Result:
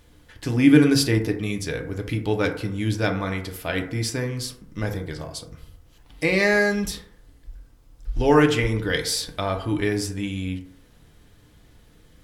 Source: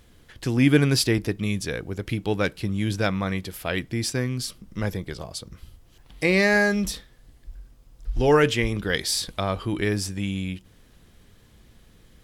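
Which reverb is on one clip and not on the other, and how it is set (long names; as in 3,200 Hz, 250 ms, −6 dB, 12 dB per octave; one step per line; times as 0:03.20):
feedback delay network reverb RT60 0.69 s, low-frequency decay 0.8×, high-frequency decay 0.35×, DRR 3 dB
level −1 dB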